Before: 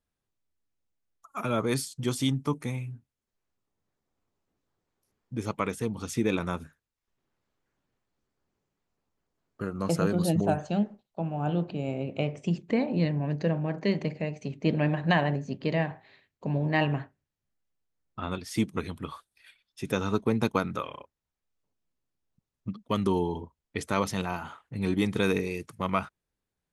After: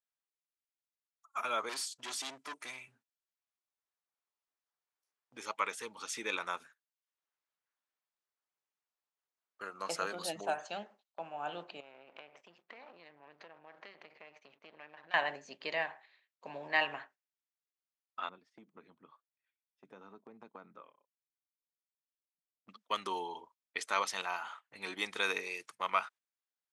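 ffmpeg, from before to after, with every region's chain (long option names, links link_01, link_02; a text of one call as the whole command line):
ffmpeg -i in.wav -filter_complex "[0:a]asettb=1/sr,asplit=3[link_01][link_02][link_03];[link_01]atrim=end=1.694[link_04];[link_02]atrim=start=1.69:end=2.88,asetpts=PTS-STARTPTS,afade=type=in:duration=0.004:curve=qsin,afade=type=out:start_time=1.186:duration=0.004:curve=qsin,aecho=1:1:3:0.58,atrim=end_sample=52479,asubboost=boost=10:cutoff=84,volume=31.5dB,asoftclip=hard,volume=-31.5dB[link_05];[link_03]atrim=start=2.876[link_06];[link_04][link_05]acrossfade=duration=0.004:curve1=hsin:curve2=qsin[link_07];[link_07][link_06]acrossfade=duration=0.004:curve1=qsin:curve2=hsin,asettb=1/sr,asplit=3[link_08][link_09][link_10];[link_08]atrim=end=5.404[link_11];[link_09]atrim=start=5.4:end=6.4,asetpts=PTS-STARTPTS,afade=type=in:duration=0.004:curve=qsin,afade=type=out:start_time=0.996:duration=0.004:curve=qsin,acompressor=mode=upward:threshold=-34dB:ratio=2.5:attack=3.2:release=140:knee=2.83:detection=peak,asuperstop=centerf=710:order=12:qfactor=6.5[link_12];[link_10]atrim=start=6.396[link_13];[link_11][link_12]acrossfade=duration=0.004:curve1=hsin:curve2=qsin[link_14];[link_14][link_13]acrossfade=duration=0.004:curve1=qsin:curve2=hsin,asettb=1/sr,asplit=3[link_15][link_16][link_17];[link_15]atrim=end=11.804[link_18];[link_16]atrim=start=11.8:end=15.14,asetpts=PTS-STARTPTS,afade=type=in:duration=0.004:curve=qsin,afade=type=out:start_time=3.336:duration=0.004:curve=qsin,aeval=exprs='if(lt(val(0),0),0.251*val(0),val(0))':channel_layout=same,lowpass=3600,acompressor=threshold=-38dB:ratio=6:attack=3.2:release=140:knee=1:detection=peak[link_19];[link_17]atrim=start=15.136[link_20];[link_18][link_19]acrossfade=duration=0.004:curve1=hsin:curve2=qsin[link_21];[link_21][link_20]acrossfade=duration=0.004:curve1=qsin:curve2=hsin,asettb=1/sr,asplit=3[link_22][link_23][link_24];[link_22]atrim=end=18.294[link_25];[link_23]atrim=start=18.29:end=22.69,asetpts=PTS-STARTPTS,afade=type=in:duration=0.004:curve=qsin,afade=type=out:start_time=4.396:duration=0.004:curve=qsin,bandpass=frequency=180:width_type=q:width=1.3,acompressor=threshold=-30dB:ratio=5:attack=3.2:release=140:knee=1:detection=peak[link_26];[link_24]atrim=start=22.686[link_27];[link_25][link_26]acrossfade=duration=0.004:curve1=hsin:curve2=qsin[link_28];[link_28][link_27]acrossfade=duration=0.004:curve1=qsin:curve2=hsin,lowpass=8400,agate=range=-9dB:threshold=-48dB:ratio=16:detection=peak,highpass=930" out.wav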